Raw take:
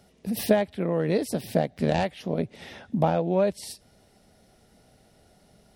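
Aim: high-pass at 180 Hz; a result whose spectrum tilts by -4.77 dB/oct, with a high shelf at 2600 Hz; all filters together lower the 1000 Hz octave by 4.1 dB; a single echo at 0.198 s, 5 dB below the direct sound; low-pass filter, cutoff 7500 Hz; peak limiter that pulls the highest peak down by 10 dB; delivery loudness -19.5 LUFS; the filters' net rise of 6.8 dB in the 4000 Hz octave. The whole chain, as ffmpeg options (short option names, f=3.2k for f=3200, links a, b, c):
-af "highpass=180,lowpass=7.5k,equalizer=f=1k:t=o:g=-7,highshelf=f=2.6k:g=5.5,equalizer=f=4k:t=o:g=4.5,alimiter=limit=-18dB:level=0:latency=1,aecho=1:1:198:0.562,volume=10dB"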